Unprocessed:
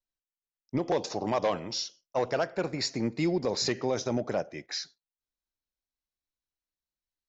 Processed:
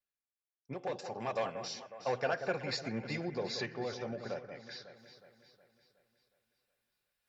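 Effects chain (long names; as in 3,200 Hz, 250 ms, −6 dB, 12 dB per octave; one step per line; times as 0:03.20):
source passing by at 0:02.43, 20 m/s, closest 21 metres
low-shelf EQ 180 Hz −7 dB
notch comb filter 320 Hz
reversed playback
upward compression, threshold −59 dBFS
reversed playback
thirty-one-band graphic EQ 125 Hz +7 dB, 630 Hz +4 dB, 1,600 Hz +8 dB, 2,500 Hz +6 dB, 6,300 Hz −7 dB
on a send: delay that swaps between a low-pass and a high-pass 183 ms, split 1,600 Hz, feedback 69%, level −8.5 dB
on the sum: level −4.5 dB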